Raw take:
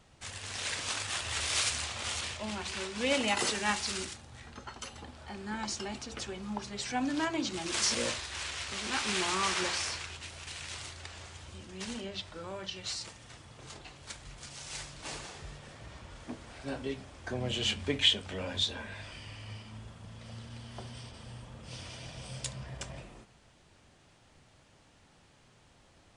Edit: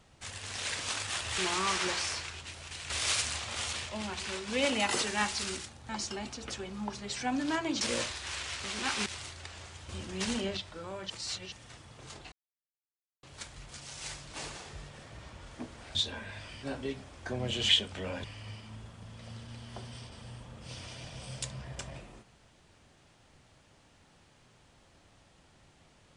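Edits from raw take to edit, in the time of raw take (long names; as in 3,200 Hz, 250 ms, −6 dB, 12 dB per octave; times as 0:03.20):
0:04.37–0:05.58: remove
0:07.50–0:07.89: remove
0:09.14–0:10.66: move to 0:01.38
0:11.49–0:12.17: clip gain +6.5 dB
0:12.70–0:13.12: reverse
0:13.92: splice in silence 0.91 s
0:17.70–0:18.03: remove
0:18.58–0:19.26: move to 0:16.64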